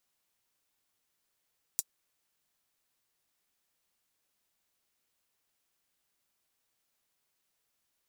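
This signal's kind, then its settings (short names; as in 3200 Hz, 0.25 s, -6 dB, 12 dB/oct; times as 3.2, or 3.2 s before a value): closed hi-hat, high-pass 6400 Hz, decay 0.05 s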